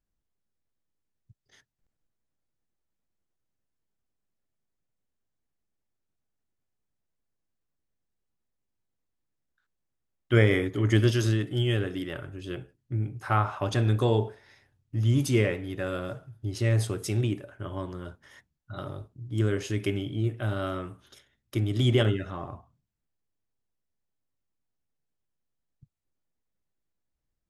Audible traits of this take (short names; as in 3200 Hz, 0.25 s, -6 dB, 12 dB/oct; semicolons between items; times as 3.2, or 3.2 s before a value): noise floor -82 dBFS; spectral tilt -6.0 dB/oct